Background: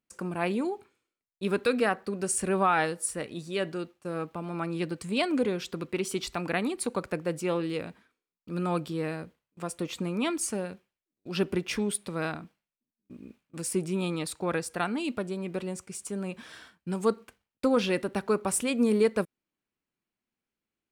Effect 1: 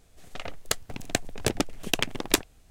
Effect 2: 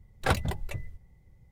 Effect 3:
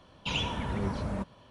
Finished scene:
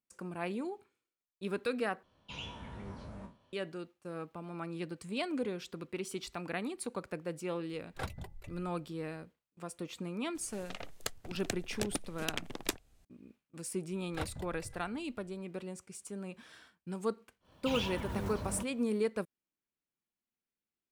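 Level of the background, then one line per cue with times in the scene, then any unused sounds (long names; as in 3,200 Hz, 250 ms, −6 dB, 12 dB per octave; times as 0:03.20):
background −8.5 dB
0:02.03: overwrite with 3 −14.5 dB + peak hold with a decay on every bin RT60 0.31 s
0:07.73: mix in 2 −14 dB
0:10.35: mix in 1 −11 dB + multiband upward and downward compressor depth 40%
0:13.91: mix in 2 −14 dB + single-tap delay 556 ms −19 dB
0:17.40: mix in 3 −6.5 dB, fades 0.10 s + one scale factor per block 5 bits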